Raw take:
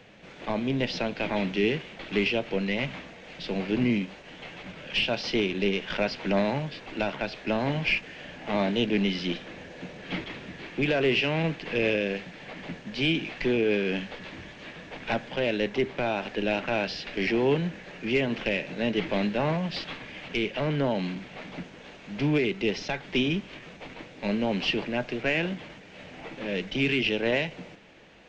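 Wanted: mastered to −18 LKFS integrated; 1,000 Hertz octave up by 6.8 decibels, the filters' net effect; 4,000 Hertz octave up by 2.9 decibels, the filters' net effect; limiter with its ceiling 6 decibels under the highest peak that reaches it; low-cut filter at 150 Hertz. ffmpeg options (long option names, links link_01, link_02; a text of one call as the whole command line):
ffmpeg -i in.wav -af "highpass=150,equalizer=frequency=1000:width_type=o:gain=9,equalizer=frequency=4000:width_type=o:gain=3.5,volume=10dB,alimiter=limit=-6.5dB:level=0:latency=1" out.wav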